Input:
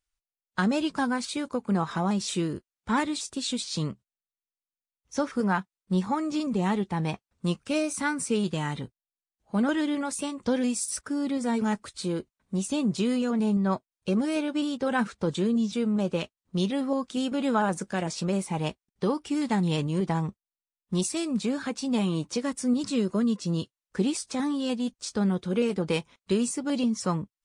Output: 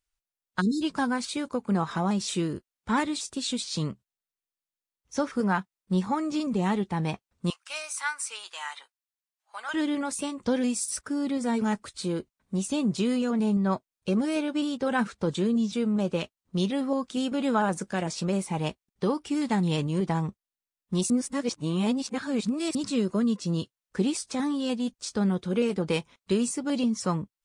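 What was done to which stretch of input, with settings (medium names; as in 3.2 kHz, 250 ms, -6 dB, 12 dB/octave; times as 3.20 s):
0.61–0.82 s: spectral selection erased 490–3600 Hz
7.50–9.74 s: high-pass 900 Hz 24 dB/octave
21.10–22.75 s: reverse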